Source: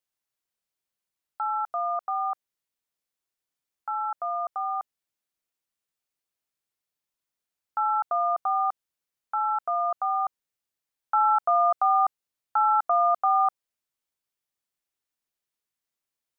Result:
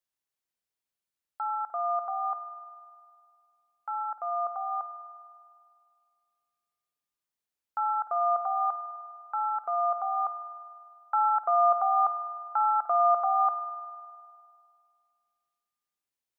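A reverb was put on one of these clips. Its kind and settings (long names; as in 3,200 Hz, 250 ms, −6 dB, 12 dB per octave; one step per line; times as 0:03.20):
spring reverb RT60 2.2 s, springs 50 ms, chirp 70 ms, DRR 9 dB
level −3.5 dB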